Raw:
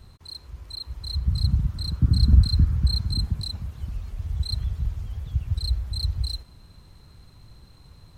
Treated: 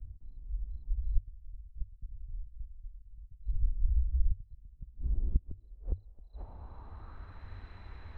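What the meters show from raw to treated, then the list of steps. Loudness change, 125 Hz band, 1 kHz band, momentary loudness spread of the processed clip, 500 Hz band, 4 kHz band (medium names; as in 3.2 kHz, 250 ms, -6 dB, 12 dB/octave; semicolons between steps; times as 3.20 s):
-14.0 dB, -16.0 dB, -5.5 dB, 18 LU, -7.5 dB, under -35 dB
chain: inverted gate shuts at -20 dBFS, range -29 dB; low-pass sweep 150 Hz -> 2 kHz, 4.06–7.58 s; frequency shift -100 Hz; trim +3 dB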